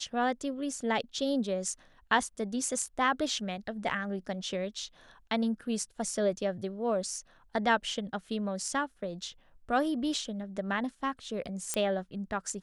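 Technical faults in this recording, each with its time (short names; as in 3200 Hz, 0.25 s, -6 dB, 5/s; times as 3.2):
11.74 pop -15 dBFS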